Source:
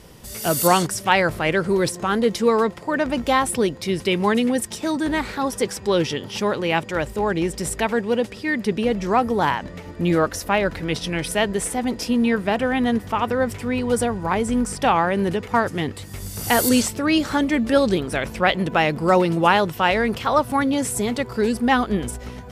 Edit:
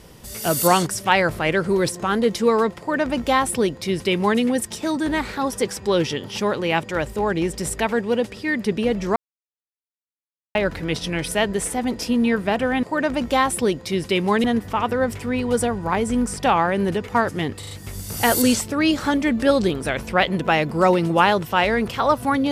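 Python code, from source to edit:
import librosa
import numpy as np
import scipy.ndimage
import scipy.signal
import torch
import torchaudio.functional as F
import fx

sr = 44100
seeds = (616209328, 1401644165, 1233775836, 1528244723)

y = fx.edit(x, sr, fx.duplicate(start_s=2.79, length_s=1.61, to_s=12.83),
    fx.silence(start_s=9.16, length_s=1.39),
    fx.stutter(start_s=15.98, slice_s=0.04, count=4), tone=tone)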